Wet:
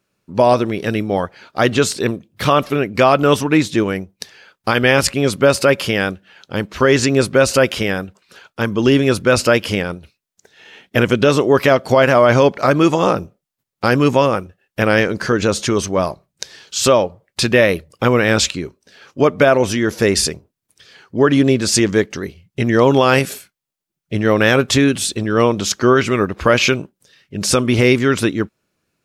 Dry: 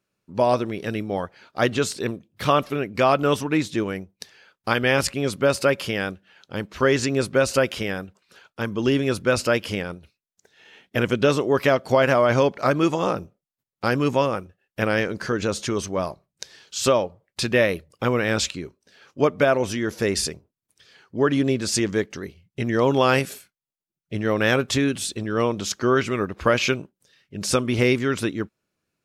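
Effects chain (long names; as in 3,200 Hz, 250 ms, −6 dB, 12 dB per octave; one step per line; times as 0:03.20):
boost into a limiter +9 dB
level −1 dB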